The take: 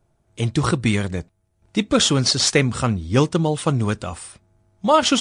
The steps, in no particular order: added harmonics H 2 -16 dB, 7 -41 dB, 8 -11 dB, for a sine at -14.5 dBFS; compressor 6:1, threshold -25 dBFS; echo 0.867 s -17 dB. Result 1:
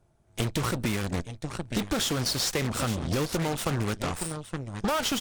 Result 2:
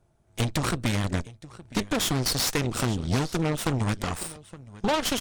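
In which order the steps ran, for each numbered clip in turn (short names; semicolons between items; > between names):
echo > added harmonics > compressor; compressor > echo > added harmonics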